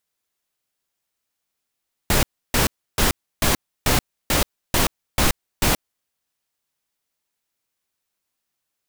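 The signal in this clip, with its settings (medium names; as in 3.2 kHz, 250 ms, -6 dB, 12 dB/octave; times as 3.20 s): noise bursts pink, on 0.13 s, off 0.31 s, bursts 9, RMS -17.5 dBFS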